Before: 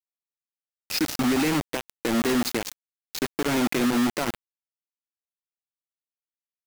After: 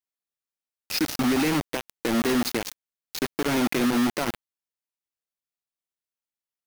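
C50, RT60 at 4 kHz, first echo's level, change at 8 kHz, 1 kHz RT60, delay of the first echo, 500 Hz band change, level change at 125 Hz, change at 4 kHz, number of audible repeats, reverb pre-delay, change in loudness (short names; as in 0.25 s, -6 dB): none, none, none, -1.0 dB, none, none, 0.0 dB, 0.0 dB, 0.0 dB, none, none, 0.0 dB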